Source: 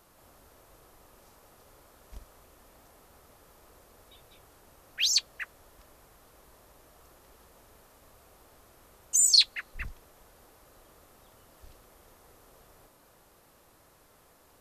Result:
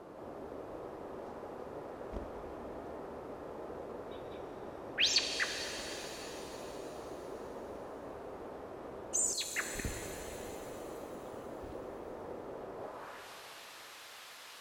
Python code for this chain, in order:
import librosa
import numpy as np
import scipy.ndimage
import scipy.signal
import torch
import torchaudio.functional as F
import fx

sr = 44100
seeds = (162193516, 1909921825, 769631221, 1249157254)

y = fx.filter_sweep_bandpass(x, sr, from_hz=380.0, to_hz=3100.0, start_s=12.74, end_s=13.29, q=1.1)
y = fx.auto_swell(y, sr, attack_ms=324.0, at=(9.18, 9.85))
y = fx.rev_shimmer(y, sr, seeds[0], rt60_s=3.7, semitones=7, shimmer_db=-8, drr_db=5.0)
y = F.gain(torch.from_numpy(y), 17.5).numpy()